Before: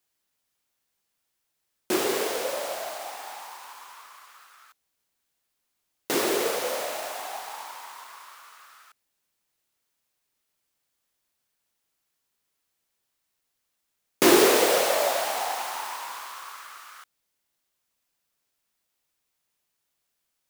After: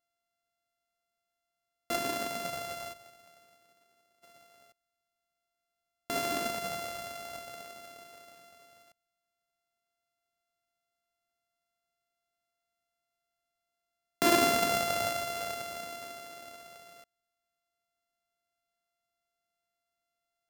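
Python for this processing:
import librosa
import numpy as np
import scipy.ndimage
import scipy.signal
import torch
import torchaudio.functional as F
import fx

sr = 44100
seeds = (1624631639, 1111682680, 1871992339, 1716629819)

y = np.r_[np.sort(x[:len(x) // 64 * 64].reshape(-1, 64), axis=1).ravel(), x[len(x) // 64 * 64:]]
y = fx.upward_expand(y, sr, threshold_db=-47.0, expansion=1.5, at=(2.92, 4.22), fade=0.02)
y = y * 10.0 ** (-7.5 / 20.0)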